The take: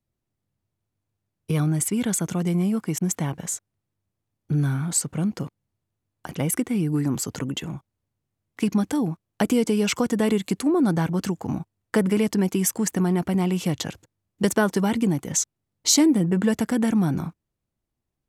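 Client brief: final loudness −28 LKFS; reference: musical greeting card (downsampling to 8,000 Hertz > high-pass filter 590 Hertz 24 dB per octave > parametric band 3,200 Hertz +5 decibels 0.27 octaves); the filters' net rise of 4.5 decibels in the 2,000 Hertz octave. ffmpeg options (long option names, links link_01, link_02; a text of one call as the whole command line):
ffmpeg -i in.wav -af "equalizer=frequency=2000:width_type=o:gain=5.5,aresample=8000,aresample=44100,highpass=frequency=590:width=0.5412,highpass=frequency=590:width=1.3066,equalizer=frequency=3200:width_type=o:width=0.27:gain=5,volume=4.5dB" out.wav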